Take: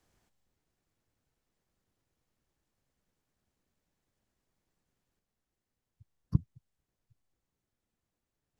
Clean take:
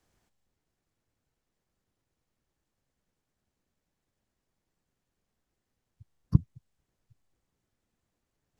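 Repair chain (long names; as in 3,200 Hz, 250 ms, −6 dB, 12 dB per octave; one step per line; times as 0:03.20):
level 0 dB, from 0:05.19 +5.5 dB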